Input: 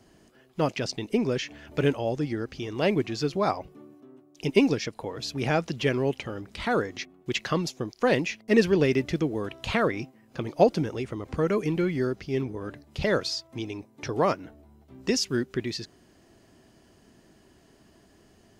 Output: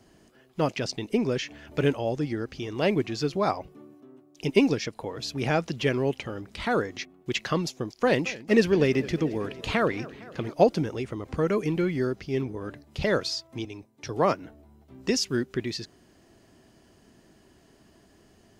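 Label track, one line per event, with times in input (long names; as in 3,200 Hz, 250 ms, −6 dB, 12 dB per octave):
7.680000	10.530000	feedback echo with a swinging delay time 227 ms, feedback 71%, depth 163 cents, level −19 dB
13.650000	14.420000	multiband upward and downward expander depth 40%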